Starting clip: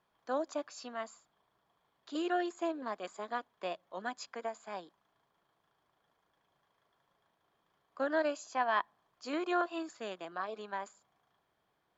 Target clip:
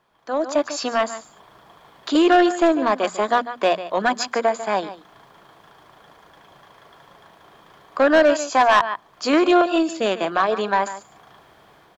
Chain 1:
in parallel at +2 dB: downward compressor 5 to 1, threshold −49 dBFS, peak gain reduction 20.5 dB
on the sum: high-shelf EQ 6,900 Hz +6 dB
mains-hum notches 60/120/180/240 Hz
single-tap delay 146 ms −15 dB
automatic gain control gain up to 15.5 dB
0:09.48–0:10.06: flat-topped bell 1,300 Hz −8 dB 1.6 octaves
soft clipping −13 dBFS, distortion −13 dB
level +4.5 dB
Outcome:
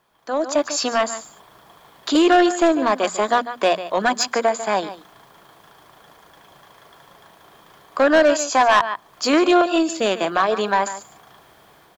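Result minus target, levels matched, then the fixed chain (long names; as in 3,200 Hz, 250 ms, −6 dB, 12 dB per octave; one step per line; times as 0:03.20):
downward compressor: peak gain reduction −6.5 dB; 8,000 Hz band +5.5 dB
in parallel at +2 dB: downward compressor 5 to 1, threshold −57 dBFS, peak gain reduction 26.5 dB
on the sum: high-shelf EQ 6,900 Hz −5 dB
mains-hum notches 60/120/180/240 Hz
single-tap delay 146 ms −15 dB
automatic gain control gain up to 15.5 dB
0:09.48–0:10.06: flat-topped bell 1,300 Hz −8 dB 1.6 octaves
soft clipping −13 dBFS, distortion −14 dB
level +4.5 dB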